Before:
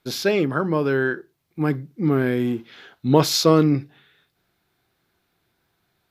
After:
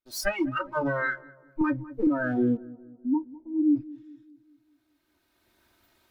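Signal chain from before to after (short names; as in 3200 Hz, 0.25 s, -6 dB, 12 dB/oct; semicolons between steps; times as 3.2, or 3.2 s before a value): minimum comb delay 3.2 ms; recorder AGC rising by 16 dB/s; 0.62–1.02 notch 1700 Hz, Q 7.3; 2.57–3.76 vocal tract filter u; spectral noise reduction 24 dB; darkening echo 0.203 s, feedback 51%, low-pass 1100 Hz, level -19.5 dB; 1.61–2.07 three-band squash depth 70%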